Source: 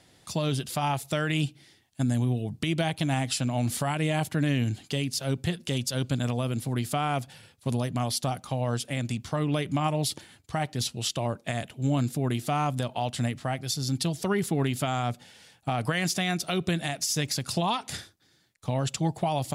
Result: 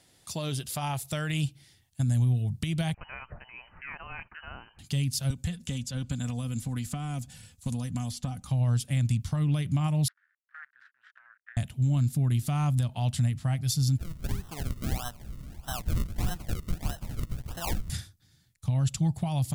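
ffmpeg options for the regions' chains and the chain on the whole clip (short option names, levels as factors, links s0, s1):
-filter_complex "[0:a]asettb=1/sr,asplit=3[s0][s1][s2];[s0]atrim=end=2.944[s3];[s1]atrim=start=2.94:end=4.79,asetpts=PTS-STARTPTS,afade=t=in:d=0.004:c=qsin,afade=t=out:st=1.846:d=0.004:c=qsin,highpass=1200,lowpass=f=2700:t=q:w=0.5098,lowpass=f=2700:t=q:w=0.6013,lowpass=f=2700:t=q:w=0.9,lowpass=f=2700:t=q:w=2.563,afreqshift=-3200[s4];[s2]atrim=start=4.786[s5];[s3][s4]acrossfade=d=0.004:c1=hsin:c2=qsin[s6];[s6][s5]acrossfade=d=0.004:c1=qsin:c2=hsin,asettb=1/sr,asplit=3[s7][s8][s9];[s7]atrim=end=5.304[s10];[s8]atrim=start=5.3:end=8.46,asetpts=PTS-STARTPTS,afade=t=in:d=0.004:c=qsin,afade=t=out:st=3.156:d=0.004:c=qsin,acrossover=split=430|3300[s11][s12][s13];[s11]acompressor=threshold=0.0251:ratio=4[s14];[s12]acompressor=threshold=0.0126:ratio=4[s15];[s13]acompressor=threshold=0.00282:ratio=4[s16];[s14][s15][s16]amix=inputs=3:normalize=0,equalizer=f=7100:w=2:g=9.5,aecho=1:1:4:0.49,atrim=end_sample=139356[s17];[s9]atrim=start=8.456[s18];[s10][s17]acrossfade=d=0.004:c1=hsin:c2=qsin[s19];[s19][s18]acrossfade=d=0.004:c1=qsin:c2=hsin,asettb=1/sr,asplit=3[s20][s21][s22];[s20]atrim=end=10.084[s23];[s21]atrim=start=10.08:end=11.57,asetpts=PTS-STARTPTS,afade=t=in:d=0.004:c=qsin,afade=t=out:st=1.486:d=0.004:c=qsin,acrusher=bits=5:dc=4:mix=0:aa=0.000001,asuperpass=centerf=1600:order=4:qfactor=4[s24];[s22]atrim=start=11.566[s25];[s23][s24]acrossfade=d=0.004:c1=hsin:c2=qsin[s26];[s26][s25]acrossfade=d=0.004:c1=qsin:c2=hsin,asettb=1/sr,asplit=3[s27][s28][s29];[s27]atrim=end=13.984[s30];[s28]atrim=start=13.98:end=17.9,asetpts=PTS-STARTPTS,afade=t=in:d=0.004:c=qsin,afade=t=out:st=3.916:d=0.004:c=qsin,aeval=exprs='val(0)+0.5*0.01*sgn(val(0))':c=same,highpass=600,lowpass=3000,acrusher=samples=37:mix=1:aa=0.000001:lfo=1:lforange=37:lforate=1.6[s31];[s29]atrim=start=17.896[s32];[s30][s31]acrossfade=d=0.004:c1=hsin:c2=qsin[s33];[s33][s32]acrossfade=d=0.004:c1=qsin:c2=hsin,asubboost=boost=11.5:cutoff=120,alimiter=limit=0.224:level=0:latency=1:release=252,highshelf=f=5900:g=9.5,volume=0.531"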